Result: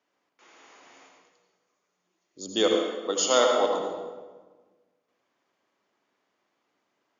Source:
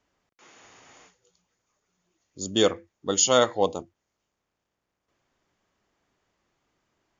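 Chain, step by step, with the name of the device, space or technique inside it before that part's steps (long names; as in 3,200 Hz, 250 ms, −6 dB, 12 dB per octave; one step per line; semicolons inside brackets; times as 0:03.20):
supermarket ceiling speaker (band-pass filter 280–5,900 Hz; convolution reverb RT60 1.4 s, pre-delay 70 ms, DRR 1.5 dB)
0:02.74–0:03.80: high-pass filter 220 Hz 24 dB per octave
level −2 dB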